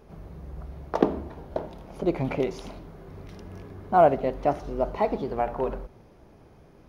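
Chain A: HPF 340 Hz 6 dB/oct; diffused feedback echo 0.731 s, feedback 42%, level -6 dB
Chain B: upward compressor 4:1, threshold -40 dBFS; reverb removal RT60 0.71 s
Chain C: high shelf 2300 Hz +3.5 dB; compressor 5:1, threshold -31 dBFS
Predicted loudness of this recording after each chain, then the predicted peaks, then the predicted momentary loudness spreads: -28.5, -27.0, -38.0 LUFS; -5.5, -4.5, -15.5 dBFS; 17, 23, 12 LU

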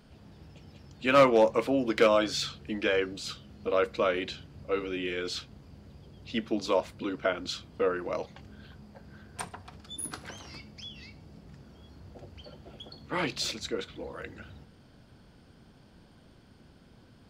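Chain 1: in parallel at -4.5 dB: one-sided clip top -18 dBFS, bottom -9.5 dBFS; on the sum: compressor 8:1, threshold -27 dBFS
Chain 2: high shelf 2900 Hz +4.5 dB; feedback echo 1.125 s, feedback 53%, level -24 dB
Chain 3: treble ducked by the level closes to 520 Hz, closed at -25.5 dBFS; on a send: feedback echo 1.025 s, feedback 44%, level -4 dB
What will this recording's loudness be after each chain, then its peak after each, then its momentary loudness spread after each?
-34.0, -29.0, -32.5 LUFS; -14.5, -6.5, -13.0 dBFS; 22, 24, 20 LU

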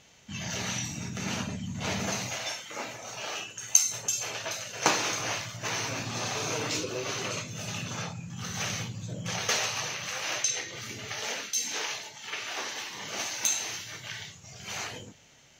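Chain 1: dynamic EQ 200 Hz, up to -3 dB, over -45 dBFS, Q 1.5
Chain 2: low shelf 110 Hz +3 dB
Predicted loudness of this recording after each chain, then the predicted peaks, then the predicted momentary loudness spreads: -31.0, -31.0 LUFS; -2.5, -2.5 dBFS; 11, 11 LU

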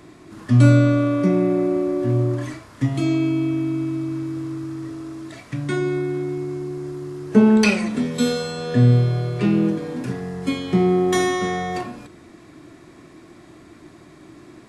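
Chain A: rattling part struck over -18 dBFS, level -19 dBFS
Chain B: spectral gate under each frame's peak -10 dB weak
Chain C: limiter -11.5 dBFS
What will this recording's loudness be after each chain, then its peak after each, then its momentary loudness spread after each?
-20.5, -30.0, -22.5 LUFS; -2.0, -8.5, -11.5 dBFS; 16, 18, 12 LU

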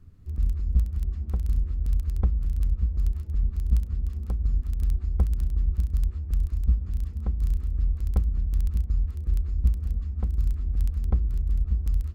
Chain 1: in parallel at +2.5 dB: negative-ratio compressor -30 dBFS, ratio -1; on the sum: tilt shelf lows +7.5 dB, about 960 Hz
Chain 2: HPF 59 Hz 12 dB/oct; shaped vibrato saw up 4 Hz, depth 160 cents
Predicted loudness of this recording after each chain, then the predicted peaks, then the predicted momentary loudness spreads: -16.5, -31.5 LUFS; -2.5, -13.0 dBFS; 1, 4 LU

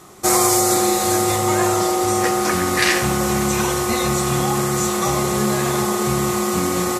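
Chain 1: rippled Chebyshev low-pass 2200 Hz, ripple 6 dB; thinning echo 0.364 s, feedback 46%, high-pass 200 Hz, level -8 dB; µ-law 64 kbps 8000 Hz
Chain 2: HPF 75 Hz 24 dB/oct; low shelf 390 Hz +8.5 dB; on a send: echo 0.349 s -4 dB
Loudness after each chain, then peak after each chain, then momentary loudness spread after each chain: -21.5, -14.5 LUFS; -8.5, -1.5 dBFS; 3, 2 LU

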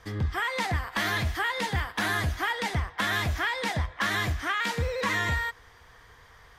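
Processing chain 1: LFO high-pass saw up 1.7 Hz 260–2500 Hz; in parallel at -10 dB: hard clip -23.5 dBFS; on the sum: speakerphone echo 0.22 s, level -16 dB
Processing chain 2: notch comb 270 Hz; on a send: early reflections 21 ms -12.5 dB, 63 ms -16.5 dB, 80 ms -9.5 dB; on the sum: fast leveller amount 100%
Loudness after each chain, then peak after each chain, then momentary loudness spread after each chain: -24.0, -22.5 LUFS; -11.0, -10.5 dBFS; 6, 1 LU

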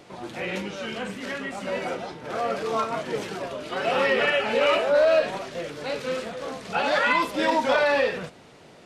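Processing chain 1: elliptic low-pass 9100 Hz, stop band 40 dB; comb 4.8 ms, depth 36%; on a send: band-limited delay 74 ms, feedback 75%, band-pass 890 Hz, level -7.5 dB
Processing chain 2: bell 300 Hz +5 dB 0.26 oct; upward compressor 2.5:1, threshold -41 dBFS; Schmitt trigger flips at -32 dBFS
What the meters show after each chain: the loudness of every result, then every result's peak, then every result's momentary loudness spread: -24.0, -25.5 LUFS; -6.5, -19.5 dBFS; 14, 2 LU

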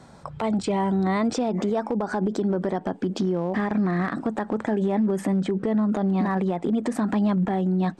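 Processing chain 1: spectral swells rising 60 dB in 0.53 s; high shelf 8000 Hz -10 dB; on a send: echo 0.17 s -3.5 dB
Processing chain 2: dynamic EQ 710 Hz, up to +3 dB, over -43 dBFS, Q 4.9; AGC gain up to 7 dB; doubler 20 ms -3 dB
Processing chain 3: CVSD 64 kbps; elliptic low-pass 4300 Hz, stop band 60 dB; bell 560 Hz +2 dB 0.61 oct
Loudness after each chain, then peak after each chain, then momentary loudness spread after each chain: -22.0, -15.5, -25.5 LUFS; -10.0, -4.5, -16.0 dBFS; 3, 6, 4 LU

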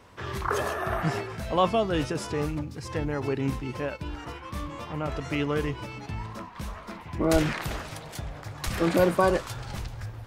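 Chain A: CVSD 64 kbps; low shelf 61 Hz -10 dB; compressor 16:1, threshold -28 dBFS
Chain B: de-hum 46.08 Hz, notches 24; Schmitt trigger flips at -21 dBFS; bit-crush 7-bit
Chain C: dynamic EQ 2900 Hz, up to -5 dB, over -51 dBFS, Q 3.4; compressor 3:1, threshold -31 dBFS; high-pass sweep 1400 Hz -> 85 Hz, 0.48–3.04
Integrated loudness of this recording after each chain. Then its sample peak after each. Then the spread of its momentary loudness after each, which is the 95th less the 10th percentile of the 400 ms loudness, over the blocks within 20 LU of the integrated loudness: -35.0, -37.0, -33.5 LUFS; -18.5, -24.0, -15.5 dBFS; 7, 14, 6 LU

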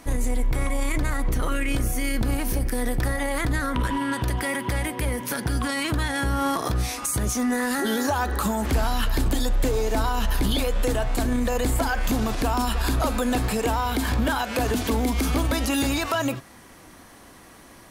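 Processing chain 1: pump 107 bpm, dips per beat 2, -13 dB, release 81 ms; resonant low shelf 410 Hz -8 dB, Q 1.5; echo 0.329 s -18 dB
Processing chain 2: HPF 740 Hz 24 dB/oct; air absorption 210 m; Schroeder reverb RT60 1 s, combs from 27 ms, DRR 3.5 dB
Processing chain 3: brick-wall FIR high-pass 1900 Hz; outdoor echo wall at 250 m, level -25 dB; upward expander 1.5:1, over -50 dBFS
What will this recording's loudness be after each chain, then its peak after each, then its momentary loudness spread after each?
-28.0, -31.0, -36.0 LUFS; -12.5, -15.5, -15.5 dBFS; 4, 8, 11 LU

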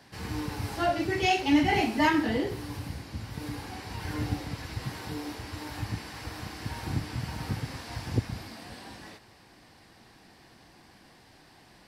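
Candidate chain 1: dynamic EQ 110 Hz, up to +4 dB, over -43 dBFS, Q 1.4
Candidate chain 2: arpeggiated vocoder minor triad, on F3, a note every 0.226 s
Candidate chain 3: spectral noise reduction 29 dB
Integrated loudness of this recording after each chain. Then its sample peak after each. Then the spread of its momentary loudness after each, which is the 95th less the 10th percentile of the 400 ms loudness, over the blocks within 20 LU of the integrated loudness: -30.0, -32.0, -29.0 LUFS; -11.0, -11.0, -11.5 dBFS; 15, 18, 21 LU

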